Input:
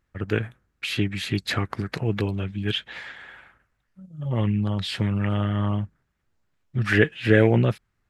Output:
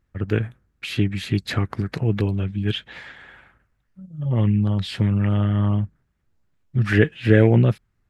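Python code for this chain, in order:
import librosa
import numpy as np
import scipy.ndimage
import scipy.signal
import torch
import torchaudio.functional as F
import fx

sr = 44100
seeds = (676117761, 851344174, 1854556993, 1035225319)

y = fx.low_shelf(x, sr, hz=380.0, db=7.5)
y = F.gain(torch.from_numpy(y), -2.0).numpy()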